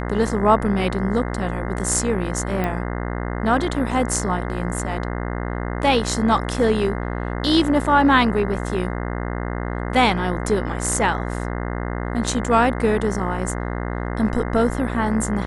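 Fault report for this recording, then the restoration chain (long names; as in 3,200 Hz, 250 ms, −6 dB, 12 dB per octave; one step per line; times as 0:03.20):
mains buzz 60 Hz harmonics 35 −26 dBFS
0:02.64: click −12 dBFS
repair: click removal
hum removal 60 Hz, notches 35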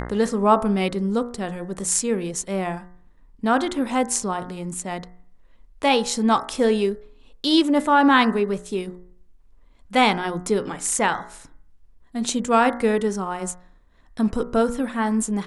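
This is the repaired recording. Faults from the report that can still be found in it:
none of them is left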